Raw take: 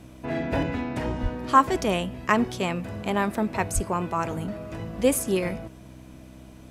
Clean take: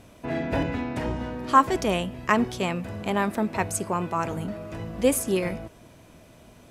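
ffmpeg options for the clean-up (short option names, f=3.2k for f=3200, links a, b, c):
-filter_complex "[0:a]bandreject=f=64:t=h:w=4,bandreject=f=128:t=h:w=4,bandreject=f=192:t=h:w=4,bandreject=f=256:t=h:w=4,bandreject=f=320:t=h:w=4,asplit=3[a][b][c];[a]afade=t=out:st=1.22:d=0.02[d];[b]highpass=f=140:w=0.5412,highpass=f=140:w=1.3066,afade=t=in:st=1.22:d=0.02,afade=t=out:st=1.34:d=0.02[e];[c]afade=t=in:st=1.34:d=0.02[f];[d][e][f]amix=inputs=3:normalize=0,asplit=3[g][h][i];[g]afade=t=out:st=3.74:d=0.02[j];[h]highpass=f=140:w=0.5412,highpass=f=140:w=1.3066,afade=t=in:st=3.74:d=0.02,afade=t=out:st=3.86:d=0.02[k];[i]afade=t=in:st=3.86:d=0.02[l];[j][k][l]amix=inputs=3:normalize=0"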